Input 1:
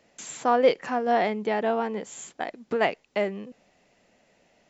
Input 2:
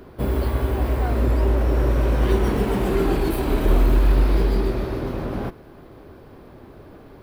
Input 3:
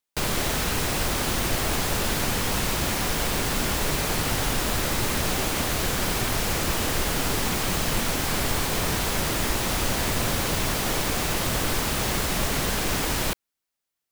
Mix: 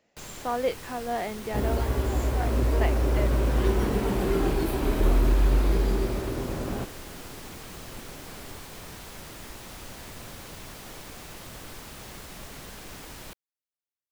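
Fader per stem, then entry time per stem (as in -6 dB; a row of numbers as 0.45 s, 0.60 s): -7.5 dB, -4.5 dB, -17.0 dB; 0.00 s, 1.35 s, 0.00 s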